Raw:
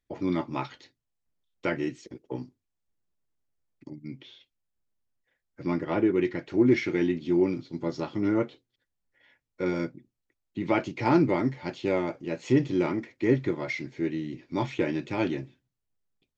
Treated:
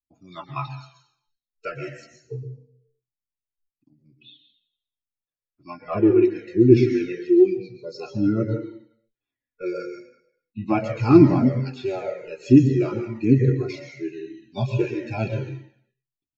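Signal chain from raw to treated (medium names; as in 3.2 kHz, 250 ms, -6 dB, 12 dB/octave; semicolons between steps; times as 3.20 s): spectral noise reduction 26 dB; reverberation RT60 0.70 s, pre-delay 111 ms, DRR 8 dB; Shepard-style flanger falling 1.6 Hz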